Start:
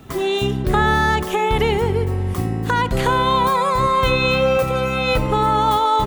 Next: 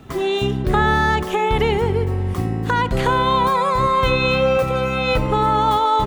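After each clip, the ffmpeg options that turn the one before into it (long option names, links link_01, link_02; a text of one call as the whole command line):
ffmpeg -i in.wav -af "highshelf=frequency=7400:gain=-8" out.wav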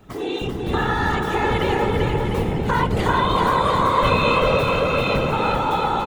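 ffmpeg -i in.wav -filter_complex "[0:a]dynaudnorm=framelen=240:gausssize=11:maxgain=6.5dB,afftfilt=real='hypot(re,im)*cos(2*PI*random(0))':imag='hypot(re,im)*sin(2*PI*random(1))':win_size=512:overlap=0.75,asplit=2[link_01][link_02];[link_02]aecho=0:1:390|702|951.6|1151|1311:0.631|0.398|0.251|0.158|0.1[link_03];[link_01][link_03]amix=inputs=2:normalize=0" out.wav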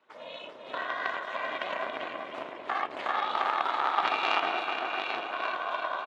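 ffmpeg -i in.wav -af "aeval=exprs='val(0)*sin(2*PI*190*n/s)':channel_layout=same,aeval=exprs='0.422*(cos(1*acos(clip(val(0)/0.422,-1,1)))-cos(1*PI/2))+0.0841*(cos(3*acos(clip(val(0)/0.422,-1,1)))-cos(3*PI/2))':channel_layout=same,highpass=740,lowpass=3600" out.wav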